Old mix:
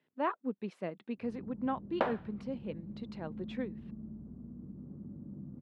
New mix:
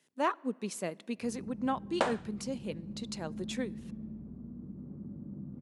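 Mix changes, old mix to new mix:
speech: send on; first sound: send +6.5 dB; master: remove air absorption 390 m

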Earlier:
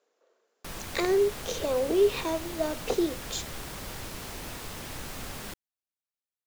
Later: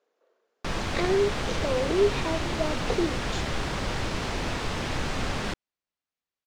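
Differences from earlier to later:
background +11.0 dB; master: add air absorption 110 m

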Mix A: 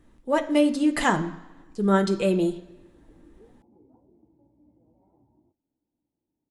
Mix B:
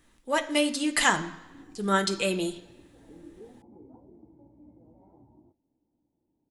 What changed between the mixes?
speech: add tilt shelf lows -8 dB, about 1200 Hz; background +6.5 dB

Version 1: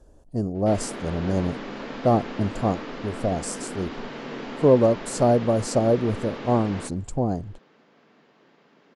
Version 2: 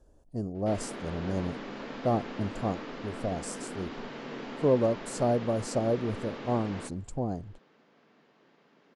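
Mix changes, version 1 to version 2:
speech -7.5 dB; background -5.0 dB

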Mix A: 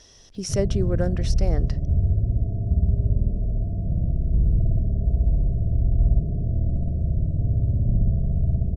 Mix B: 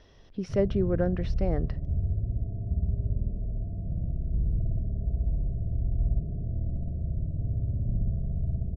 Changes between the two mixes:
background -7.5 dB; master: add air absorption 360 m

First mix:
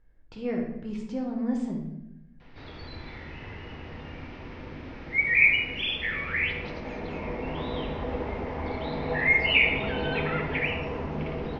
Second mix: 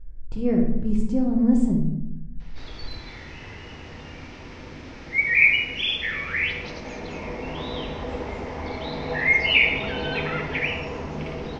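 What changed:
speech: add tilt -4.5 dB/oct; master: remove air absorption 240 m

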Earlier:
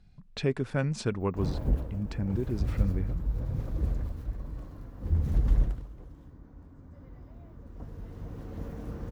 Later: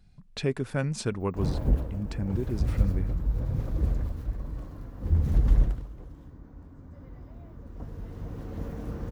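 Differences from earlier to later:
speech: remove air absorption 54 m; background +3.0 dB

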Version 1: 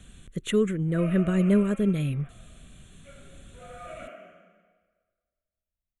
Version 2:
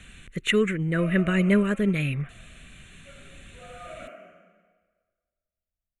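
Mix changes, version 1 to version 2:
speech: add bell 2200 Hz +13.5 dB 1.5 oct; master: add notch 3300 Hz, Q 11

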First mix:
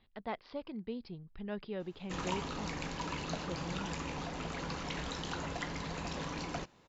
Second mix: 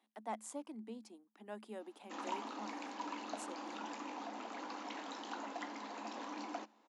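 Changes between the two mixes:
speech: remove steep low-pass 5000 Hz 96 dB/oct; master: add rippled Chebyshev high-pass 210 Hz, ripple 9 dB

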